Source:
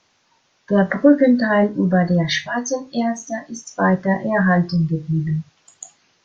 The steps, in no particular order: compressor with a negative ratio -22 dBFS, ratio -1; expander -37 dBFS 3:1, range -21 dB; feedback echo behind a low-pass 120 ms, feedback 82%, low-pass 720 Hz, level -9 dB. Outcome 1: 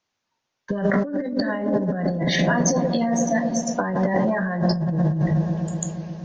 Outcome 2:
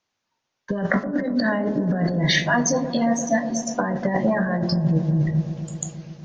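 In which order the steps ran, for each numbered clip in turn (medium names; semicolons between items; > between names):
feedback echo behind a low-pass > compressor with a negative ratio > expander; compressor with a negative ratio > feedback echo behind a low-pass > expander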